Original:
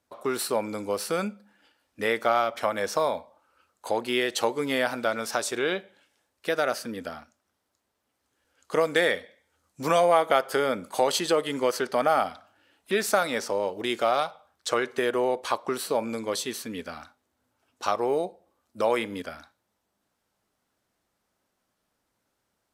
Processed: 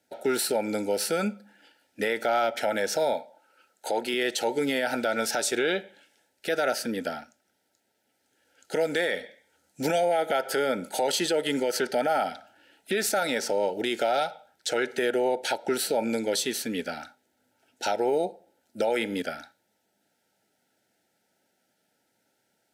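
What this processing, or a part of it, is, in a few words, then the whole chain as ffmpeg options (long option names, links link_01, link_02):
PA system with an anti-feedback notch: -filter_complex "[0:a]highpass=150,asuperstop=centerf=1100:order=20:qfactor=3.1,alimiter=limit=-21.5dB:level=0:latency=1:release=92,asettb=1/sr,asplit=3[link_01][link_02][link_03];[link_01]atrim=end=3.134[link_04];[link_02]atrim=start=3.13:end=4.14,asetpts=PTS-STARTPTS,afade=type=in:duration=0.004:curve=qsin,afade=type=out:start_time=1.006:duration=0.004:curve=qsin,highpass=frequency=240:poles=1[link_05];[link_03]atrim=start=4.136[link_06];[link_04][link_05]acrossfade=duration=0.004:curve1=hsin:curve2=qsin[link_07];[link_07][link_06]acrossfade=duration=0.004:curve1=qsin:curve2=hsin,volume=5dB"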